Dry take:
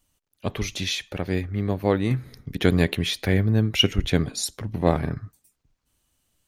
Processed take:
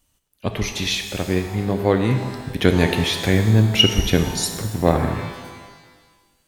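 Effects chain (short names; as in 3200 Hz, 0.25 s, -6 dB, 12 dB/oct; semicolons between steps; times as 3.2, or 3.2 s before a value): shimmer reverb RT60 1.4 s, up +12 st, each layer -8 dB, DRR 6 dB; gain +3.5 dB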